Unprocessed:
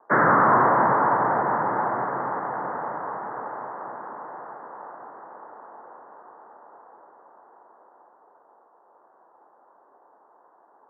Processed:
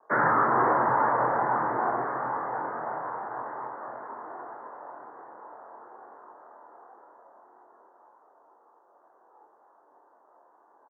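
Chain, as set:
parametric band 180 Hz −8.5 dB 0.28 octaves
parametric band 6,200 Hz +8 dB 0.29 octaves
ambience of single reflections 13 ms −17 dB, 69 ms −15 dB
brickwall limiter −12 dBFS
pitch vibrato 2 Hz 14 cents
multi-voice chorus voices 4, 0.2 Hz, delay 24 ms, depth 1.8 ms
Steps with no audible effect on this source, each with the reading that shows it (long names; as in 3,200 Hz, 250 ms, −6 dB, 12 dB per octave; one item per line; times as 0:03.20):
parametric band 6,200 Hz: nothing at its input above 2,000 Hz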